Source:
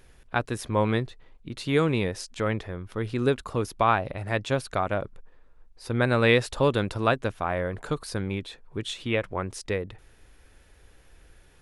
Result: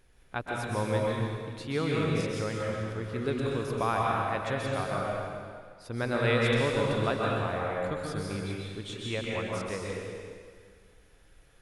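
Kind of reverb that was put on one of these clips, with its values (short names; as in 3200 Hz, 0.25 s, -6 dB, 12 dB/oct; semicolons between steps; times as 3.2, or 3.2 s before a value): plate-style reverb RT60 1.9 s, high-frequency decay 0.95×, pre-delay 0.115 s, DRR -3.5 dB; gain -8.5 dB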